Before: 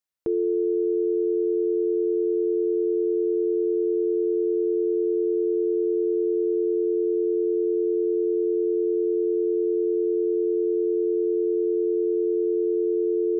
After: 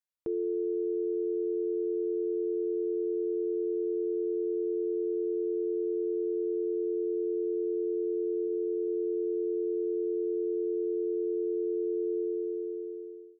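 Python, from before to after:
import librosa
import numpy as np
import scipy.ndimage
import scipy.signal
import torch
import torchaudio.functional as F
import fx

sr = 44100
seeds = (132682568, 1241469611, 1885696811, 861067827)

y = fx.fade_out_tail(x, sr, length_s=1.22)
y = fx.hum_notches(y, sr, base_hz=60, count=7, at=(8.47, 8.88))
y = F.gain(torch.from_numpy(y), -7.5).numpy()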